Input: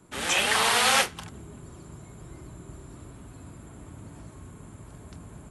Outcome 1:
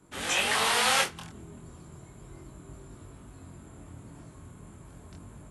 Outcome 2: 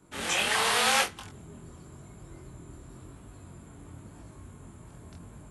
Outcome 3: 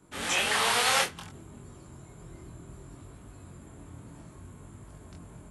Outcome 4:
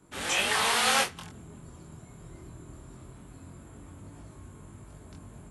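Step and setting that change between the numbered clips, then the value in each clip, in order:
chorus, rate: 0.35, 0.91, 0.62, 0.22 Hz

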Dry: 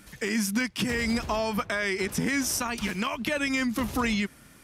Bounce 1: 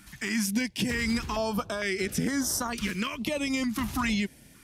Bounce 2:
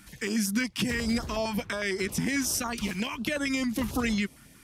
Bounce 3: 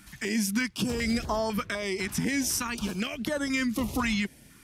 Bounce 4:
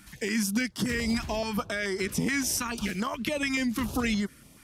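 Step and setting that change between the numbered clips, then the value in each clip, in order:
stepped notch, rate: 2.2, 11, 4, 7 Hz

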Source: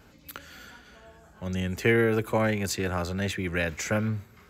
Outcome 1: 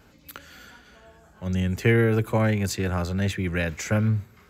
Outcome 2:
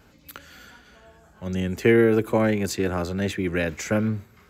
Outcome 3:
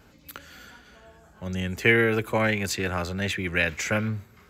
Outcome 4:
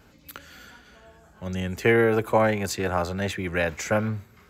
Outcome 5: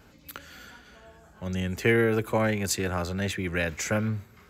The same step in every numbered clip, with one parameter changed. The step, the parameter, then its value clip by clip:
dynamic EQ, frequency: 120, 310, 2500, 790, 9600 Hz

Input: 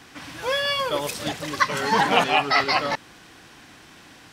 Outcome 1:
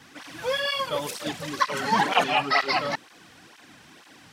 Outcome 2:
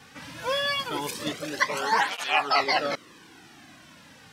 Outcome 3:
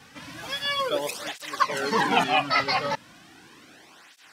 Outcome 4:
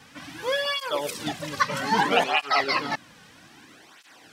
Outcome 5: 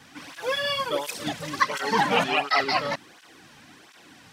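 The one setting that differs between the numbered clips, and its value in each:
tape flanging out of phase, nulls at: 2.1, 0.23, 0.36, 0.62, 1.4 Hz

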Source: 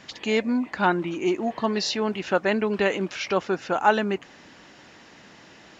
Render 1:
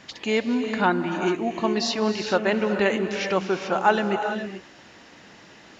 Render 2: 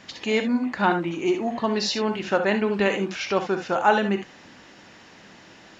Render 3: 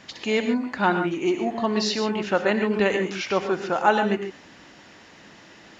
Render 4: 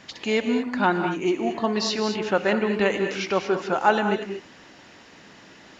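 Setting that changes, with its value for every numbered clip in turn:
non-linear reverb, gate: 460, 90, 160, 250 ms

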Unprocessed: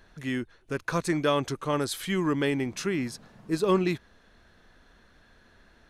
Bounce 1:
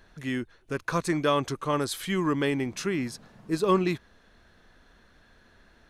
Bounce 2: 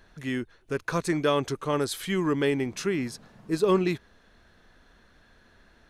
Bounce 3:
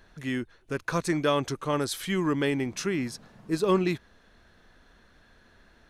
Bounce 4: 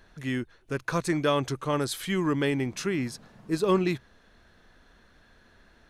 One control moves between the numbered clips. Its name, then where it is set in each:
dynamic EQ, frequency: 1100, 420, 5700, 130 Hz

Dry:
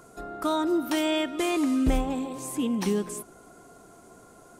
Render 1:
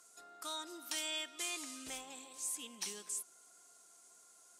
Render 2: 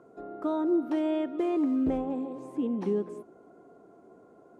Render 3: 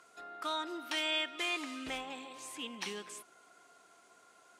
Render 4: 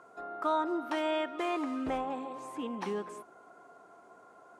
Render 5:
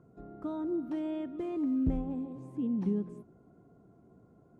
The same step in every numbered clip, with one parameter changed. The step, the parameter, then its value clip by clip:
band-pass, frequency: 7000, 390, 2800, 1000, 130 Hz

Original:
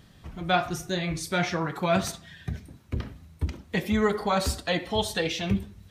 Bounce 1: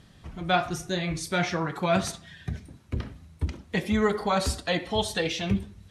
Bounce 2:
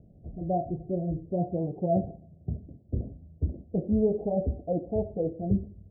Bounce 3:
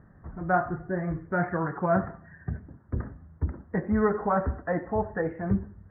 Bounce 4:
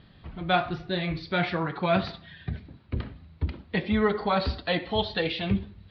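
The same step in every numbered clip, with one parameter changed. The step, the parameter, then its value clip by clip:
steep low-pass, frequency: 12000, 700, 1800, 4600 Hz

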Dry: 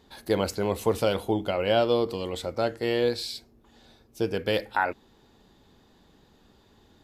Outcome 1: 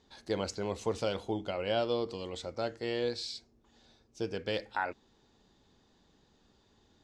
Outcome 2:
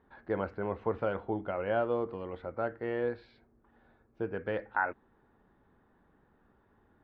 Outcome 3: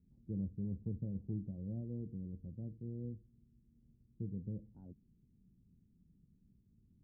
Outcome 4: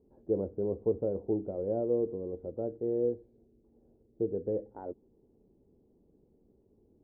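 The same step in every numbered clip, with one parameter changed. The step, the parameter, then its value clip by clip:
ladder low-pass, frequency: 7700, 1900, 210, 530 Hz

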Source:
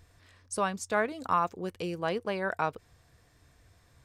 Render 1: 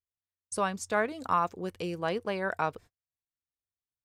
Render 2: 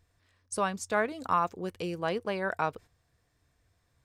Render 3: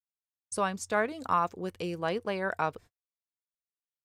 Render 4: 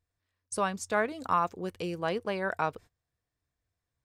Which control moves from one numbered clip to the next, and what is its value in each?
gate, range: -45, -10, -59, -24 dB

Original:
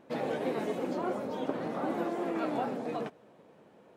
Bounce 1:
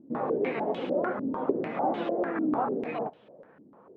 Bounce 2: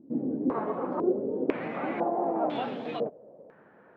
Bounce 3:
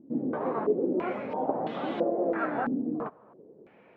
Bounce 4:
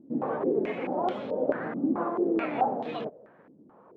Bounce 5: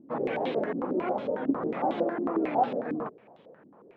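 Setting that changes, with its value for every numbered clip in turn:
stepped low-pass, rate: 6.7, 2, 3, 4.6, 11 Hz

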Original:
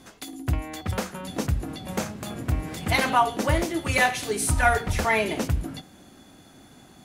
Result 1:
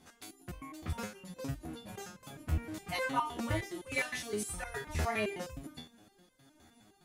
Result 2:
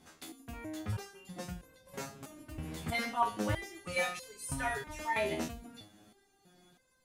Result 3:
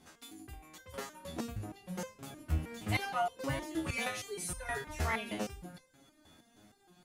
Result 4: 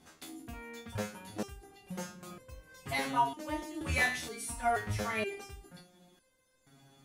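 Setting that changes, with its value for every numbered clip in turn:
stepped resonator, rate: 9.7, 3.1, 6.4, 2.1 Hz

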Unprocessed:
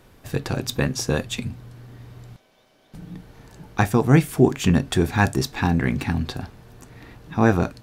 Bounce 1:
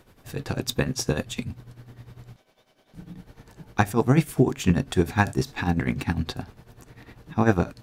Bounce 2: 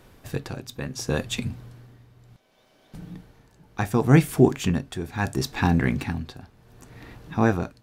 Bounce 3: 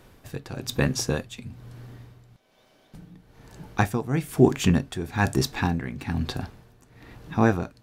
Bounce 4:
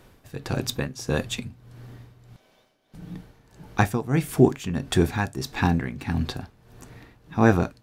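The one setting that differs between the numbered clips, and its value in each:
tremolo, rate: 10, 0.7, 1.1, 1.6 Hz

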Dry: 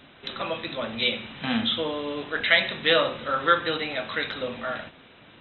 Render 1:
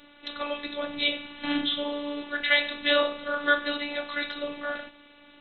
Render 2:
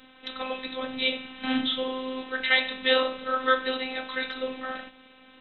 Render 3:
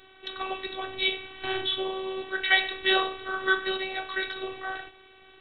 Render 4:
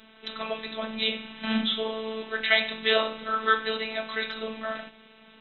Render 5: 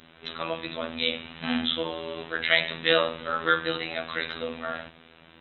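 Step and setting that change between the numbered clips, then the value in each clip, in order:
robotiser, frequency: 290, 260, 380, 220, 82 Hz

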